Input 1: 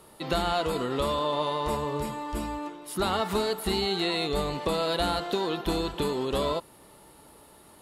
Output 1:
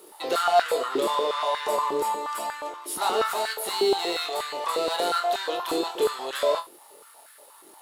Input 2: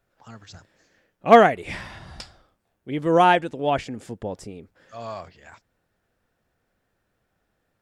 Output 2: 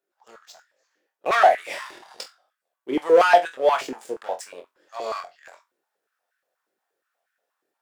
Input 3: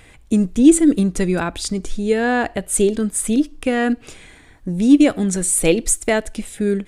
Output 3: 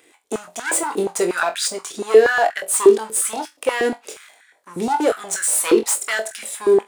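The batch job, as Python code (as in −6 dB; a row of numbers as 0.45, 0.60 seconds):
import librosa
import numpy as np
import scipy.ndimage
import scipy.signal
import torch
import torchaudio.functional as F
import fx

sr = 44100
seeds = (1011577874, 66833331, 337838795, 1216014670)

p1 = fx.high_shelf(x, sr, hz=3700.0, db=9.0)
p2 = fx.leveller(p1, sr, passes=2)
p3 = fx.rider(p2, sr, range_db=4, speed_s=2.0)
p4 = p2 + (p3 * librosa.db_to_amplitude(1.5))
p5 = 10.0 ** (-0.5 / 20.0) * np.tanh(p4 / 10.0 ** (-0.5 / 20.0))
p6 = p5 + fx.room_flutter(p5, sr, wall_m=3.9, rt60_s=0.2, dry=0)
p7 = fx.filter_held_highpass(p6, sr, hz=8.4, low_hz=360.0, high_hz=1600.0)
y = p7 * librosa.db_to_amplitude(-16.0)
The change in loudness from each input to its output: +2.5, −2.0, −1.0 LU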